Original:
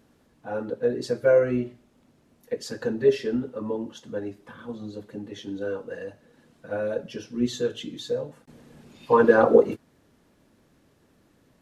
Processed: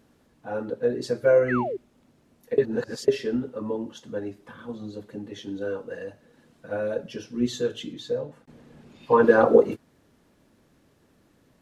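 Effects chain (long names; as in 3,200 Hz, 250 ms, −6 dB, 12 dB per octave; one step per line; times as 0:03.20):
0:01.48–0:01.77: sound drawn into the spectrogram fall 350–2,100 Hz −29 dBFS
0:02.58–0:03.08: reverse
0:07.93–0:09.23: high-shelf EQ 5,700 Hz −9 dB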